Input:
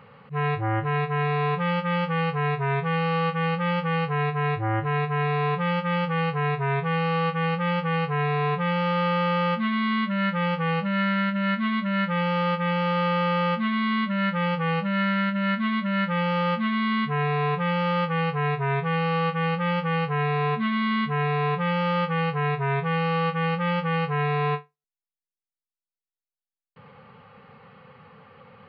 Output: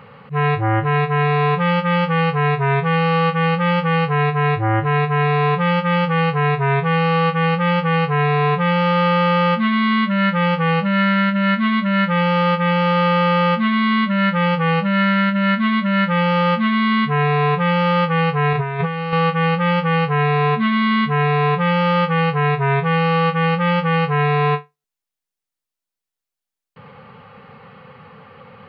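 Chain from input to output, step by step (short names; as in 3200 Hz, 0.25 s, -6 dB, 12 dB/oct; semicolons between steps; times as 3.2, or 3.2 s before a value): 18.53–19.13 negative-ratio compressor -28 dBFS, ratio -0.5; gain +7.5 dB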